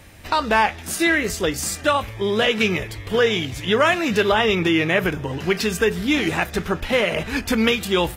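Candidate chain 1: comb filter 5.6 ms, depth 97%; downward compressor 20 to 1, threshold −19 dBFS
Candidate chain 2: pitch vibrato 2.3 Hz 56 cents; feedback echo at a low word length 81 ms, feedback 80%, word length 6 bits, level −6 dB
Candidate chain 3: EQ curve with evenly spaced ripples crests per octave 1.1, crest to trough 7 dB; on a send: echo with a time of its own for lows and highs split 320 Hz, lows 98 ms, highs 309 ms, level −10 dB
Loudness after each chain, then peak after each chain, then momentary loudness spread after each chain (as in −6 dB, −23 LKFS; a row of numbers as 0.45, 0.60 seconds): −24.0, −18.5, −19.5 LKFS; −7.5, −3.0, −2.5 dBFS; 3, 6, 6 LU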